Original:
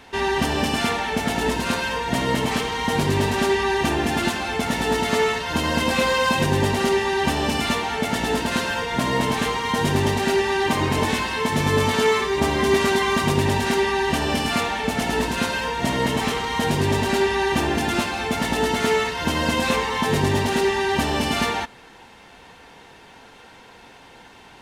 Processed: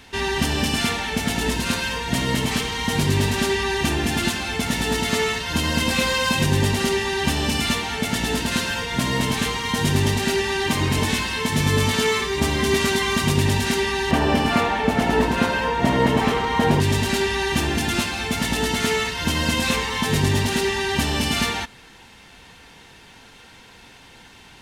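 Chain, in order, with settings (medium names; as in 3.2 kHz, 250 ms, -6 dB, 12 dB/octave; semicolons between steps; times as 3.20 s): peaking EQ 690 Hz -9.5 dB 2.8 oct, from 14.11 s 9.3 kHz, from 16.80 s 650 Hz; trim +4.5 dB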